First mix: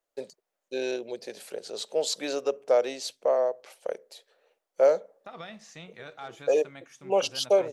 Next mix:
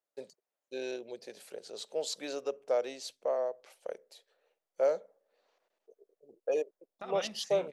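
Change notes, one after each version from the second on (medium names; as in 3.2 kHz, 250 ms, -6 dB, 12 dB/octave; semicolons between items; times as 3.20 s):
first voice -7.5 dB; second voice: entry +1.75 s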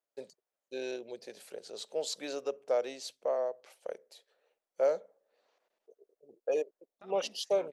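second voice -7.5 dB; reverb: off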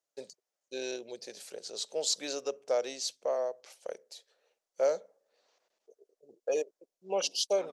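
second voice: entry +0.60 s; master: add peaking EQ 6 kHz +10.5 dB 1.3 oct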